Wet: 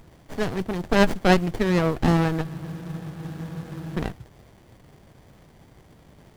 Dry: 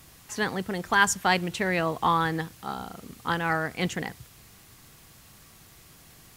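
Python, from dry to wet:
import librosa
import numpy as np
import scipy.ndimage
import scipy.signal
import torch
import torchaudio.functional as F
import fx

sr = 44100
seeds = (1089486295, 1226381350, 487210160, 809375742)

y = fx.spec_freeze(x, sr, seeds[0], at_s=2.45, hold_s=1.52)
y = fx.running_max(y, sr, window=33)
y = y * 10.0 ** (4.5 / 20.0)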